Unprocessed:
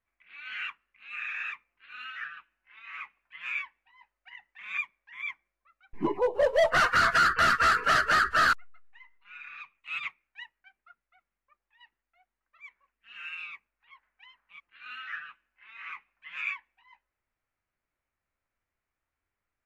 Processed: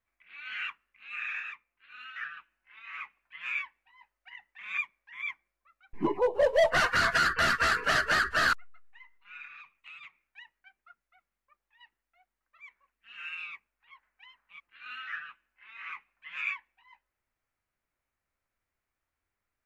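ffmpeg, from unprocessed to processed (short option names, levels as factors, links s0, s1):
-filter_complex "[0:a]asettb=1/sr,asplit=3[s0][s1][s2];[s0]atrim=end=6.394[s3];[s1]atrim=start=6.39:end=8.52,asetpts=PTS-STARTPTS,afade=t=in:d=0.004:c=qsin,afade=t=out:st=2.126:d=0.004:c=qsin,equalizer=f=1300:t=o:w=0.22:g=-8.5[s4];[s2]atrim=start=8.516[s5];[s3][s4]acrossfade=d=0.004:c1=hsin:c2=qsin[s6];[s6][s5]acrossfade=d=0.004:c1=qsin:c2=hsin,asettb=1/sr,asplit=3[s7][s8][s9];[s7]atrim=end=9.454[s10];[s8]atrim=start=9.45:end=13.18,asetpts=PTS-STARTPTS,afade=t=in:d=0.004:c=qsin,afade=t=out:st=3.726:d=0.004:c=qsin,acompressor=threshold=0.00631:ratio=16:attack=3.2:release=140:knee=1:detection=peak[s11];[s9]atrim=start=13.176[s12];[s10][s11]acrossfade=d=0.004:c1=hsin:c2=qsin[s13];[s13][s12]acrossfade=d=0.004:c1=qsin:c2=hsin,asplit=3[s14][s15][s16];[s14]atrim=end=1.402[s17];[s15]atrim=start=1.398:end=2.162,asetpts=PTS-STARTPTS,volume=0.596[s18];[s16]atrim=start=2.158[s19];[s17][s18]acrossfade=d=0.004:c1=hsin:c2=hsin[s20];[s20][s19]acrossfade=d=0.004:c1=hsin:c2=hsin"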